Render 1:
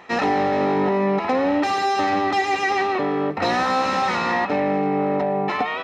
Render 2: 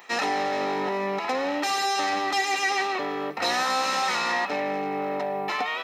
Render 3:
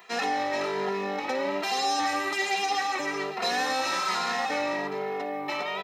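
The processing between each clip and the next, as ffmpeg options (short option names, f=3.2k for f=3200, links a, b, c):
-af "aemphasis=mode=production:type=riaa,volume=-4.5dB"
-filter_complex "[0:a]asplit=2[a][b];[b]aecho=0:1:421:0.473[c];[a][c]amix=inputs=2:normalize=0,asplit=2[d][e];[e]adelay=2.5,afreqshift=1.2[f];[d][f]amix=inputs=2:normalize=1"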